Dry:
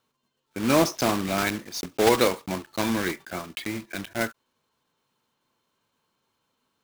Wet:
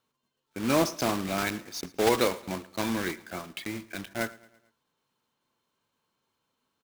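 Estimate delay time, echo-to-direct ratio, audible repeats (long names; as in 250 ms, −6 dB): 111 ms, −20.0 dB, 3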